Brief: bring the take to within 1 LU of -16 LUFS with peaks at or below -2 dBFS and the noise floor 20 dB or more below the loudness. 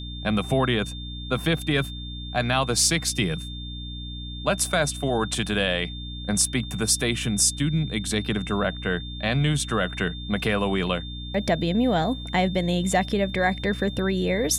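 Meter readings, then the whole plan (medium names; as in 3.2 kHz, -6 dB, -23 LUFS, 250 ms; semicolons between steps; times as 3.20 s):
hum 60 Hz; highest harmonic 300 Hz; hum level -33 dBFS; steady tone 3.6 kHz; tone level -38 dBFS; loudness -24.5 LUFS; peak level -8.5 dBFS; loudness target -16.0 LUFS
-> hum notches 60/120/180/240/300 Hz; band-stop 3.6 kHz, Q 30; trim +8.5 dB; peak limiter -2 dBFS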